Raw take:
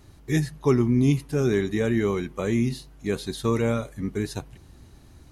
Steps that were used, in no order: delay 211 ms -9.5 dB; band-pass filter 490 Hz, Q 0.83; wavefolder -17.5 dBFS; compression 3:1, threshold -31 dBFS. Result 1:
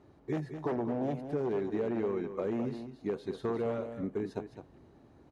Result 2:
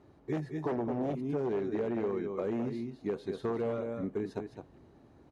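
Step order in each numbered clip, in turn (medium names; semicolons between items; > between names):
wavefolder > band-pass filter > compression > delay; delay > wavefolder > band-pass filter > compression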